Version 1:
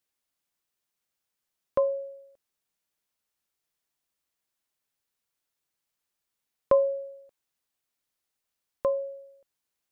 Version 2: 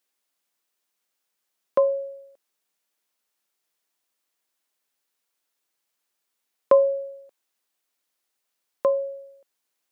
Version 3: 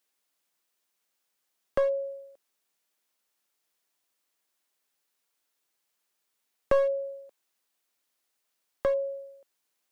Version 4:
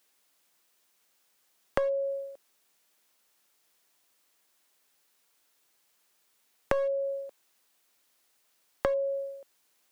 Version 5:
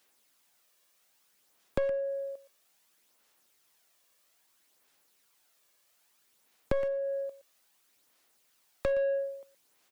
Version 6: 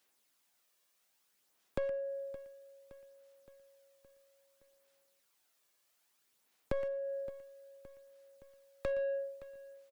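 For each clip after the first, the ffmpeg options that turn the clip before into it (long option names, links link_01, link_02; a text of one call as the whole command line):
ffmpeg -i in.wav -af "highpass=250,volume=5dB" out.wav
ffmpeg -i in.wav -filter_complex "[0:a]acrossover=split=560[link_01][link_02];[link_02]acompressor=threshold=-33dB:ratio=12[link_03];[link_01][link_03]amix=inputs=2:normalize=0,aeval=exprs='clip(val(0),-1,0.0668)':channel_layout=same" out.wav
ffmpeg -i in.wav -af "acompressor=threshold=-35dB:ratio=5,volume=8.5dB" out.wav
ffmpeg -i in.wav -filter_complex "[0:a]aecho=1:1:118:0.126,aphaser=in_gain=1:out_gain=1:delay=1.8:decay=0.36:speed=0.61:type=sinusoidal,acrossover=split=380[link_01][link_02];[link_02]asoftclip=type=tanh:threshold=-28.5dB[link_03];[link_01][link_03]amix=inputs=2:normalize=0" out.wav
ffmpeg -i in.wav -af "aecho=1:1:568|1136|1704|2272|2840:0.133|0.0773|0.0449|0.026|0.0151,volume=-6dB" out.wav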